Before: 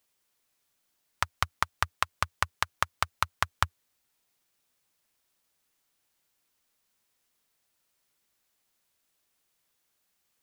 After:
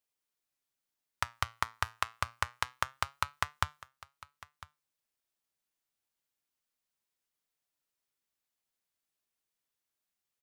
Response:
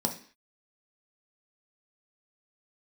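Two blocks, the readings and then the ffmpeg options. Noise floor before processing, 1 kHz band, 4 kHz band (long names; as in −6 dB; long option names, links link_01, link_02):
−76 dBFS, −4.5 dB, −4.5 dB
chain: -filter_complex "[0:a]agate=range=-8dB:threshold=-57dB:ratio=16:detection=peak,flanger=delay=6.7:depth=2.2:regen=82:speed=0.27:shape=sinusoidal,asplit=2[link_01][link_02];[link_02]aecho=0:1:1002:0.112[link_03];[link_01][link_03]amix=inputs=2:normalize=0"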